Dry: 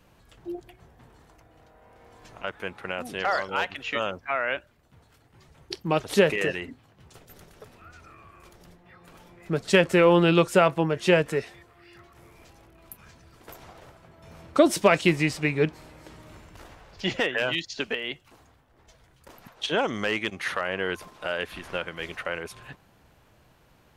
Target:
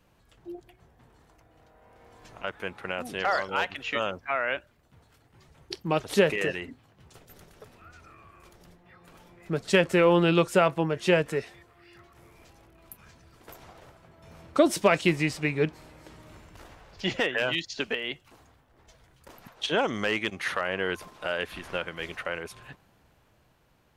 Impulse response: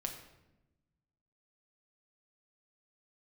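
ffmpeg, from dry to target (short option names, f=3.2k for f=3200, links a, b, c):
-af "dynaudnorm=f=490:g=7:m=5dB,volume=-5.5dB"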